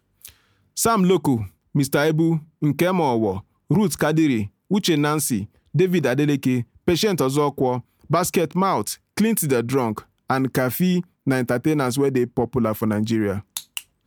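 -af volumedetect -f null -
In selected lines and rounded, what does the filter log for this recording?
mean_volume: -21.3 dB
max_volume: -5.2 dB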